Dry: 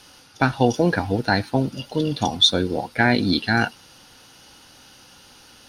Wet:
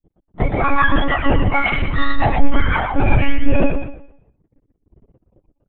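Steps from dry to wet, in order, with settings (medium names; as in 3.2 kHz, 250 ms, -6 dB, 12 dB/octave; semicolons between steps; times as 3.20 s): spectrum inverted on a logarithmic axis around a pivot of 760 Hz; gate -40 dBFS, range -8 dB; waveshaping leveller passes 5; compression 8:1, threshold -8 dBFS, peak gain reduction 5.5 dB; 1.57–1.98 s: transient shaper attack -8 dB, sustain +11 dB; gain riding 0.5 s; distance through air 130 m; on a send: feedback delay 122 ms, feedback 45%, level -3 dB; on the sum: monotone LPC vocoder at 8 kHz 280 Hz; spectral contrast expander 1.5:1; trim -3.5 dB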